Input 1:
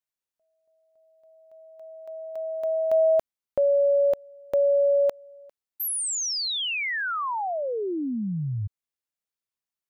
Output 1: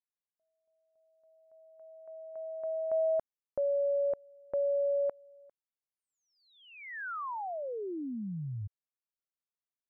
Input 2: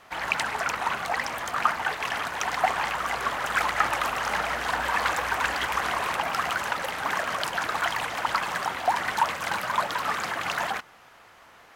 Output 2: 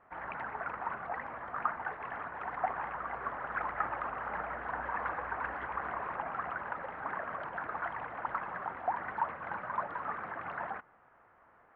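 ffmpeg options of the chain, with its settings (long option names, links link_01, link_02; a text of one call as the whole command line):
ffmpeg -i in.wav -af "lowpass=frequency=1700:width=0.5412,lowpass=frequency=1700:width=1.3066,volume=-9dB" out.wav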